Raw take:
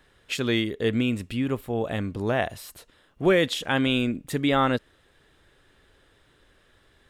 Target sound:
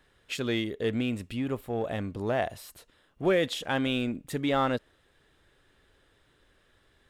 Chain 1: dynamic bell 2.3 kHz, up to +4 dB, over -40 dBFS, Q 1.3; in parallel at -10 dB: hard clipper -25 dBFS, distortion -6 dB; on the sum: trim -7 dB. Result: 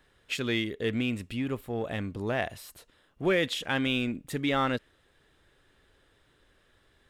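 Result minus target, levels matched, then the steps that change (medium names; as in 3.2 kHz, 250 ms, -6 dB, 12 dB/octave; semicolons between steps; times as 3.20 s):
2 kHz band +3.0 dB
change: dynamic bell 660 Hz, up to +4 dB, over -40 dBFS, Q 1.3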